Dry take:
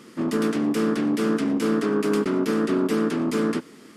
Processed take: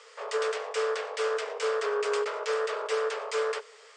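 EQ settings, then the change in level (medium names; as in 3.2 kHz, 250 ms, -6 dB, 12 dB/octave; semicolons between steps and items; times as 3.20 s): Chebyshev high-pass 420 Hz, order 10; steep low-pass 8.6 kHz 72 dB/octave; 0.0 dB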